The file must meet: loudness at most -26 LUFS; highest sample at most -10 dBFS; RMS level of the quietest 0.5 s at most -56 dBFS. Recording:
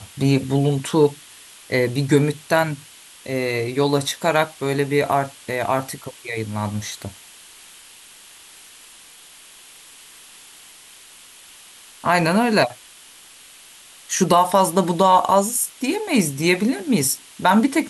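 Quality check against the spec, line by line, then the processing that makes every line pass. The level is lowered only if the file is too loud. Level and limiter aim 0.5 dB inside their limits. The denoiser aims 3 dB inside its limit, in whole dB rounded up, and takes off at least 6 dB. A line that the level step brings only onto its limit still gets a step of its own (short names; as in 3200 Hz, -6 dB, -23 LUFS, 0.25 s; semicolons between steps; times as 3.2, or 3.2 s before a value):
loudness -20.0 LUFS: fail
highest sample -4.5 dBFS: fail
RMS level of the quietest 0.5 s -46 dBFS: fail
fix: denoiser 7 dB, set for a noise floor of -46 dBFS; gain -6.5 dB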